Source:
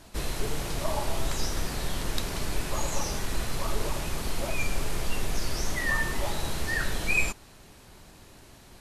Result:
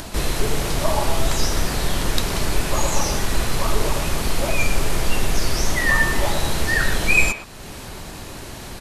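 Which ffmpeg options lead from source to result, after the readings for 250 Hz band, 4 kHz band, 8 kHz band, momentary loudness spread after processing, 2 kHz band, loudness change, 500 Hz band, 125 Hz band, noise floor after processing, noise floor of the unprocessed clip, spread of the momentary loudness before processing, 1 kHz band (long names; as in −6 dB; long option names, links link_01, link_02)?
+9.5 dB, +9.5 dB, +9.0 dB, 17 LU, +9.5 dB, +9.5 dB, +9.5 dB, +9.0 dB, −36 dBFS, −52 dBFS, 6 LU, +9.5 dB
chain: -filter_complex "[0:a]asplit=2[link_01][link_02];[link_02]acompressor=mode=upward:threshold=-27dB:ratio=2.5,volume=-1dB[link_03];[link_01][link_03]amix=inputs=2:normalize=0,asplit=2[link_04][link_05];[link_05]adelay=120,highpass=300,lowpass=3400,asoftclip=type=hard:threshold=-15dB,volume=-9dB[link_06];[link_04][link_06]amix=inputs=2:normalize=0,volume=3.5dB"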